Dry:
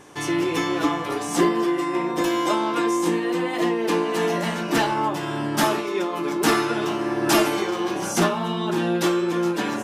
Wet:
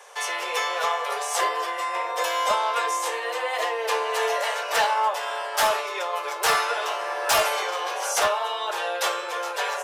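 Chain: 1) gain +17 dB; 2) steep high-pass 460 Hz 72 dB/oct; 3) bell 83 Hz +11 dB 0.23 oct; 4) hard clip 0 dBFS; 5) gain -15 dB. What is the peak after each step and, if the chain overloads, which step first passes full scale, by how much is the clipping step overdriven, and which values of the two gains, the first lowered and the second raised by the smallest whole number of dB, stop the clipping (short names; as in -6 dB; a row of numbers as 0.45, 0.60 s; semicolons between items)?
+6.0, +8.5, +8.5, 0.0, -15.0 dBFS; step 1, 8.5 dB; step 1 +8 dB, step 5 -6 dB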